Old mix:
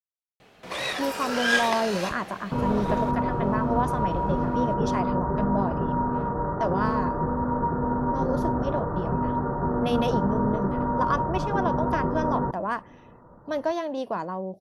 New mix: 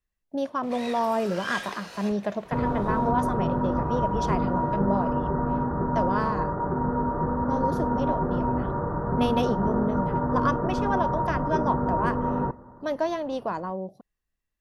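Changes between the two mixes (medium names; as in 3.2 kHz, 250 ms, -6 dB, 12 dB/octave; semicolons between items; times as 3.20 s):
speech: entry -0.65 s; first sound -9.5 dB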